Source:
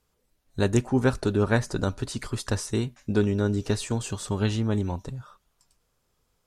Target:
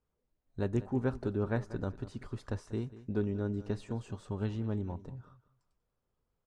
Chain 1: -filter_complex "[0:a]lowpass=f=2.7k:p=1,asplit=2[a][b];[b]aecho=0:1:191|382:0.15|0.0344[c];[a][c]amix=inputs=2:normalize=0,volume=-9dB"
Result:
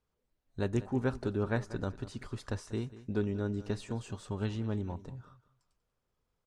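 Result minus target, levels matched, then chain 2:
2000 Hz band +3.5 dB
-filter_complex "[0:a]lowpass=f=1.1k:p=1,asplit=2[a][b];[b]aecho=0:1:191|382:0.15|0.0344[c];[a][c]amix=inputs=2:normalize=0,volume=-9dB"

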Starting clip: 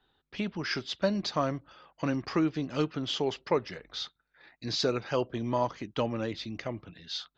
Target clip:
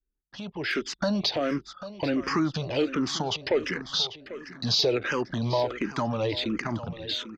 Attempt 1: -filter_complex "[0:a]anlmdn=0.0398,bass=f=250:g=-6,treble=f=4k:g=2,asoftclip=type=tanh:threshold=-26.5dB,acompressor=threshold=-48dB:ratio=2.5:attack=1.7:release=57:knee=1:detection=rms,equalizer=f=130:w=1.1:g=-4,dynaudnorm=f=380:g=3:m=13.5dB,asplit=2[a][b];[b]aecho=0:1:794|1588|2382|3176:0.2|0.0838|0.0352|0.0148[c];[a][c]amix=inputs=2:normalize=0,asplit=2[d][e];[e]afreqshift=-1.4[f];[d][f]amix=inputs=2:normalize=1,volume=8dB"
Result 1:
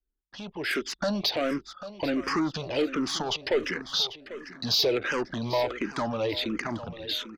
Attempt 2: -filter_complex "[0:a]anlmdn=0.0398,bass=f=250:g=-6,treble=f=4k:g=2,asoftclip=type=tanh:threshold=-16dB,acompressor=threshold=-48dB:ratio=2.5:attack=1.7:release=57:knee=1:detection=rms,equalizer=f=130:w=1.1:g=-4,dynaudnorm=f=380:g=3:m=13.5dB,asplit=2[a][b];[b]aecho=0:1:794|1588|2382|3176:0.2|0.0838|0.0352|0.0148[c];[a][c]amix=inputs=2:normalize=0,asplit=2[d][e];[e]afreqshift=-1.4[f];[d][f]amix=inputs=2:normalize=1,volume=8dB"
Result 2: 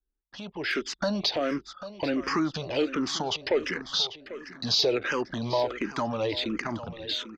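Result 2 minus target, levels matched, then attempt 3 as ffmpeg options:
125 Hz band -5.0 dB
-filter_complex "[0:a]anlmdn=0.0398,bass=f=250:g=-6,treble=f=4k:g=2,asoftclip=type=tanh:threshold=-16dB,acompressor=threshold=-48dB:ratio=2.5:attack=1.7:release=57:knee=1:detection=rms,equalizer=f=130:w=1.1:g=2.5,dynaudnorm=f=380:g=3:m=13.5dB,asplit=2[a][b];[b]aecho=0:1:794|1588|2382|3176:0.2|0.0838|0.0352|0.0148[c];[a][c]amix=inputs=2:normalize=0,asplit=2[d][e];[e]afreqshift=-1.4[f];[d][f]amix=inputs=2:normalize=1,volume=8dB"

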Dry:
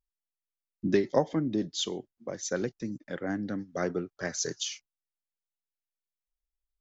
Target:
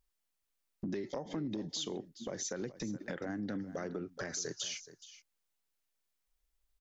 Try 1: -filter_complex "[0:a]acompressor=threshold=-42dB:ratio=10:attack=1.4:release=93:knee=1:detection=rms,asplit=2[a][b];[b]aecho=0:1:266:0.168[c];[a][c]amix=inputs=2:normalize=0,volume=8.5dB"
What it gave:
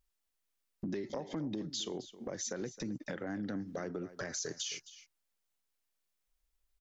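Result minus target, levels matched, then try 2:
echo 0.157 s early
-filter_complex "[0:a]acompressor=threshold=-42dB:ratio=10:attack=1.4:release=93:knee=1:detection=rms,asplit=2[a][b];[b]aecho=0:1:423:0.168[c];[a][c]amix=inputs=2:normalize=0,volume=8.5dB"

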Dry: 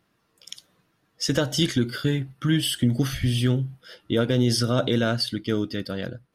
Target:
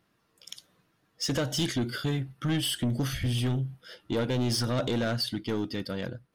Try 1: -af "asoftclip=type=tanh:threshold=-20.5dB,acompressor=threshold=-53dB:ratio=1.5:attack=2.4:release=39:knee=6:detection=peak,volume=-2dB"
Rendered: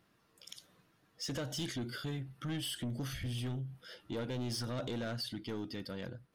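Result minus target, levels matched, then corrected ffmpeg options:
compressor: peak gain reduction +10.5 dB
-af "asoftclip=type=tanh:threshold=-20.5dB,volume=-2dB"

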